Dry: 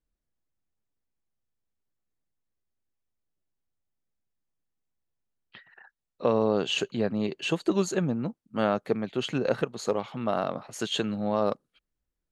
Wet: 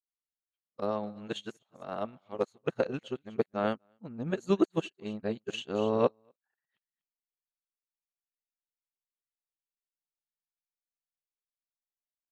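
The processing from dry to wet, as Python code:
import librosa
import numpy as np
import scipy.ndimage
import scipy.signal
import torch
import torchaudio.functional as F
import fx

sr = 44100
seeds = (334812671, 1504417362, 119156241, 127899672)

p1 = np.flip(x).copy()
p2 = fx.dynamic_eq(p1, sr, hz=4900.0, q=7.7, threshold_db=-60.0, ratio=4.0, max_db=-7)
p3 = p2 + fx.echo_single(p2, sr, ms=243, db=-15.5, dry=0)
p4 = fx.upward_expand(p3, sr, threshold_db=-44.0, expansion=2.5)
y = p4 * librosa.db_to_amplitude(1.5)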